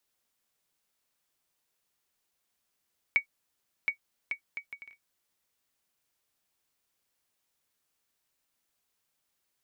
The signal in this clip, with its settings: bouncing ball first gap 0.72 s, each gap 0.6, 2250 Hz, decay 0.1 s -14 dBFS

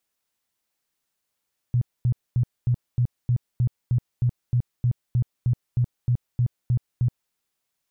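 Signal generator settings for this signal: tone bursts 122 Hz, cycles 9, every 0.31 s, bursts 18, -17 dBFS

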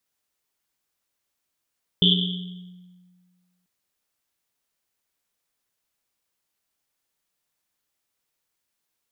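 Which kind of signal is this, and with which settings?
Risset drum length 1.64 s, pitch 180 Hz, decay 1.79 s, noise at 3300 Hz, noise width 500 Hz, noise 50%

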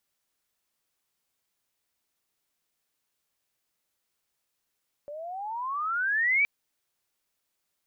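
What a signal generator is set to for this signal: gliding synth tone sine, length 1.37 s, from 569 Hz, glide +24.5 st, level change +17 dB, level -19.5 dB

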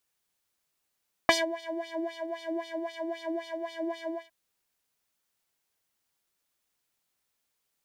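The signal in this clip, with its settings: synth patch with filter wobble E5, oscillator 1 triangle, oscillator 2 square, interval -12 st, oscillator 2 level -7 dB, noise -23 dB, filter bandpass, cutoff 790 Hz, Q 2, filter envelope 1 oct, filter sustain 40%, attack 1.2 ms, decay 0.16 s, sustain -23.5 dB, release 0.17 s, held 2.84 s, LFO 3.8 Hz, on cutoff 1.9 oct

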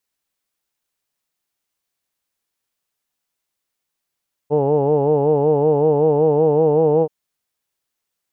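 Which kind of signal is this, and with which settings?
formant vowel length 2.58 s, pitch 143 Hz, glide +1.5 st, F1 470 Hz, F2 850 Hz, F3 2800 Hz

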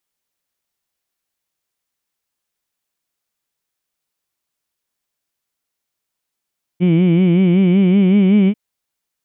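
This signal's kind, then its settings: formant-synthesis vowel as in heed, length 1.74 s, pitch 170 Hz, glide +3 st, vibrato depth 1.1 st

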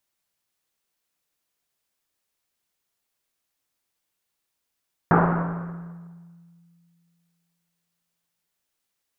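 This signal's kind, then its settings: Risset drum length 3.56 s, pitch 170 Hz, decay 2.59 s, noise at 820 Hz, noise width 1300 Hz, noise 45%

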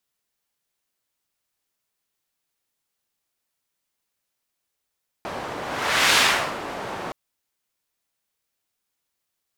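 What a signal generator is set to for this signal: whoosh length 1.87 s, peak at 0.91, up 0.59 s, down 0.47 s, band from 740 Hz, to 2600 Hz, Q 0.78, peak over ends 15 dB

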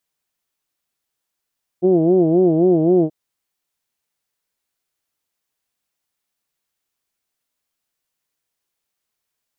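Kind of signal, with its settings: formant vowel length 1.28 s, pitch 174 Hz, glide -0.5 st, vibrato 3.8 Hz, vibrato depth 1.5 st, F1 360 Hz, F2 680 Hz, F3 3100 Hz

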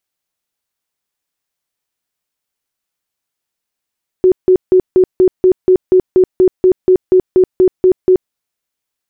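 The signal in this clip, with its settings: tone bursts 370 Hz, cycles 29, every 0.24 s, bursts 17, -4.5 dBFS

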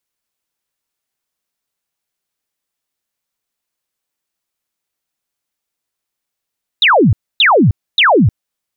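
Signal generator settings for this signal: burst of laser zaps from 4000 Hz, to 84 Hz, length 0.31 s sine, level -6 dB, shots 3, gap 0.27 s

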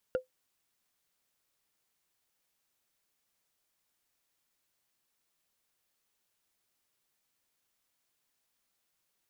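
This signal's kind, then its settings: wood hit, lowest mode 512 Hz, decay 0.13 s, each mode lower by 10 dB, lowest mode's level -22 dB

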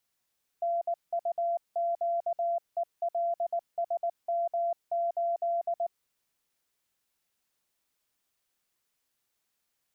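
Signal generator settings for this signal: Morse "NUQELSM8" 19 wpm 684 Hz -26 dBFS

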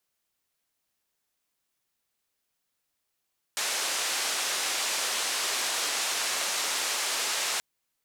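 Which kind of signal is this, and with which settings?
noise band 490–7800 Hz, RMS -29.5 dBFS 4.03 s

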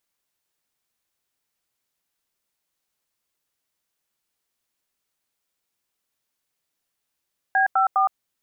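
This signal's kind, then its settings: DTMF "B54", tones 0.115 s, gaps 89 ms, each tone -18.5 dBFS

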